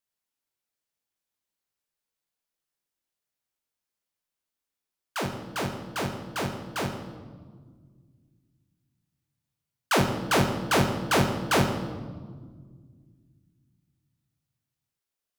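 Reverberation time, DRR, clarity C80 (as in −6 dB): 1.7 s, 2.0 dB, 8.5 dB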